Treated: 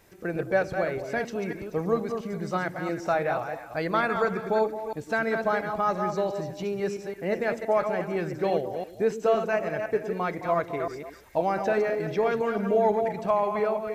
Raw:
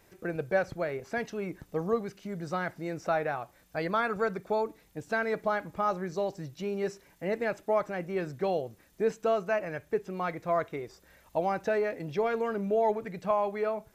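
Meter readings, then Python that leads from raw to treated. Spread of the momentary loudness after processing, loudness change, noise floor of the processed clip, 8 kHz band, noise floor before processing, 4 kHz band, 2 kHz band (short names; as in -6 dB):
7 LU, +4.0 dB, -45 dBFS, n/a, -63 dBFS, +4.0 dB, +4.0 dB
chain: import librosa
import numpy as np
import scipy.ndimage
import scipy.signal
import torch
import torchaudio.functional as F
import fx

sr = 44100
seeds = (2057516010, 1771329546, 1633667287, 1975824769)

p1 = fx.reverse_delay(x, sr, ms=170, wet_db=-6.5)
p2 = p1 + fx.echo_stepped(p1, sr, ms=108, hz=280.0, octaves=1.4, feedback_pct=70, wet_db=-6.5, dry=0)
y = F.gain(torch.from_numpy(p2), 3.0).numpy()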